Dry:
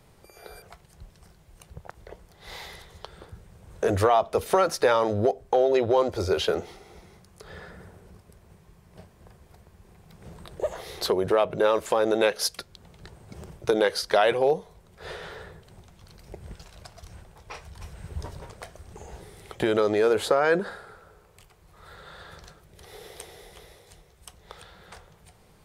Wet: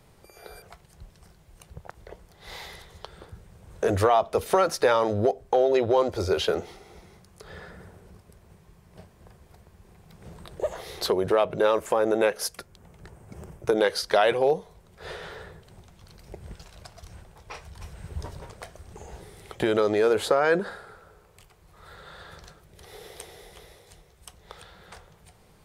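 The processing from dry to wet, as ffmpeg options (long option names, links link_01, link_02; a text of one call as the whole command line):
ffmpeg -i in.wav -filter_complex "[0:a]asettb=1/sr,asplit=3[link_01][link_02][link_03];[link_01]atrim=end=11.754[link_04];[link_02]atrim=start=11.75:end=13.78,asetpts=PTS-STARTPTS,afade=type=in:duration=0.004:curve=qsin,afade=type=out:start_time=2.026:duration=0.004:curve=qsin,equalizer=frequency=4000:width_type=o:width=0.92:gain=-9[link_05];[link_03]atrim=start=13.776[link_06];[link_04][link_05]acrossfade=duration=0.004:curve1=hsin:curve2=qsin[link_07];[link_07][link_06]acrossfade=duration=0.004:curve1=qsin:curve2=hsin" out.wav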